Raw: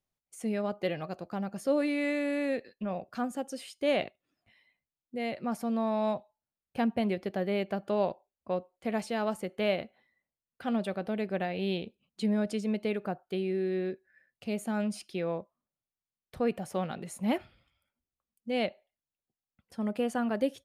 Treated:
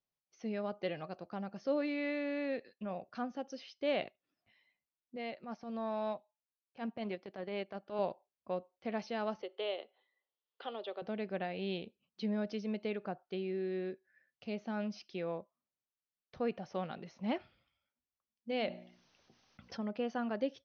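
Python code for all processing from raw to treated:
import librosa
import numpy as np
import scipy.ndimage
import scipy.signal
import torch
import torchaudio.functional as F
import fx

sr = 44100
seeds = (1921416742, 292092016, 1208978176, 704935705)

y = fx.chain(x, sr, fx.highpass(hz=210.0, slope=6),
    fx.transient(attack_db=-11, sustain_db=-6), at=(5.16, 7.99))
y = fx.chain(y, sr, fx.cabinet(low_hz=390.0, low_slope=24, high_hz=4200.0, hz=(400.0, 660.0, 1600.0, 2300.0, 3300.0), db=(4, -4, -8, -7, 7)),
    fx.band_squash(depth_pct=40), at=(9.42, 11.02))
y = fx.chain(y, sr, fx.hum_notches(base_hz=60, count=6),
    fx.env_flatten(amount_pct=50), at=(18.49, 19.81))
y = scipy.signal.sosfilt(scipy.signal.cheby1(10, 1.0, 6200.0, 'lowpass', fs=sr, output='sos'), y)
y = fx.low_shelf(y, sr, hz=79.0, db=-9.5)
y = F.gain(torch.from_numpy(y), -5.0).numpy()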